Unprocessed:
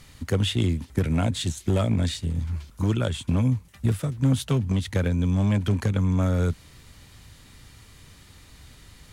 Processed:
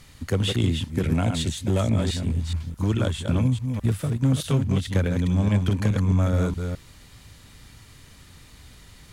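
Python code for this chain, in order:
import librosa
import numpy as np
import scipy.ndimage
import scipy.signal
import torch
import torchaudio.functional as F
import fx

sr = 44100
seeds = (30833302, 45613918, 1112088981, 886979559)

y = fx.reverse_delay(x, sr, ms=211, wet_db=-5.5)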